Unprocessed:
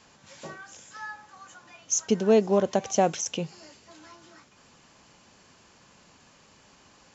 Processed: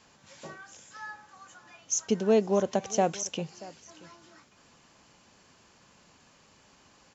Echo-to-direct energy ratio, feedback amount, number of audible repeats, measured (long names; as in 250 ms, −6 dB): −20.0 dB, repeats not evenly spaced, 1